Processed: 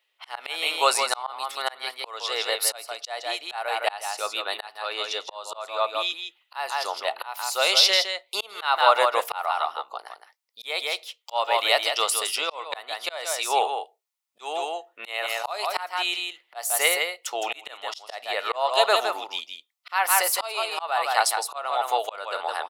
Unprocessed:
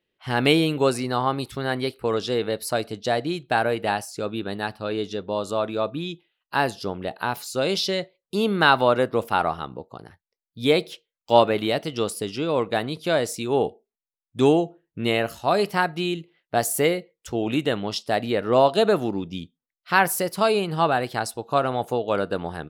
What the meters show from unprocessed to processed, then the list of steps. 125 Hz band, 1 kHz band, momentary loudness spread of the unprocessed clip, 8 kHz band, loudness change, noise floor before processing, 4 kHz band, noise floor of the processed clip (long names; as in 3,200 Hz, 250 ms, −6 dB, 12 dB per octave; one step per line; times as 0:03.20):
below −40 dB, 0.0 dB, 11 LU, +6.0 dB, −1.5 dB, below −85 dBFS, +5.0 dB, −72 dBFS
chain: high-pass filter 740 Hz 24 dB per octave
notch filter 1,600 Hz, Q 7.7
on a send: single-tap delay 163 ms −7.5 dB
on the sum: volume swells 436 ms
level +9 dB